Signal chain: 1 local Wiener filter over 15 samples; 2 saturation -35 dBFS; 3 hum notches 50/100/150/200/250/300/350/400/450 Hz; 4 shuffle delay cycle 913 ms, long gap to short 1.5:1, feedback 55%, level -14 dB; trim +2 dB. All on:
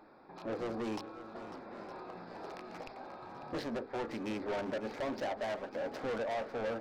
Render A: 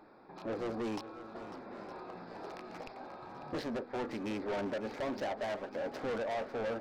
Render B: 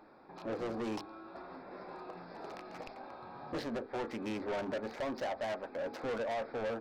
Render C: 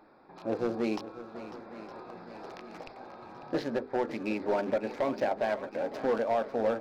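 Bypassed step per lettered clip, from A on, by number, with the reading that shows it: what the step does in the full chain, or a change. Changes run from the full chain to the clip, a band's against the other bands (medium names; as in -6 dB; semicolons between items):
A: 3, crest factor change -2.0 dB; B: 4, echo-to-direct -10.5 dB to none; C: 2, distortion -7 dB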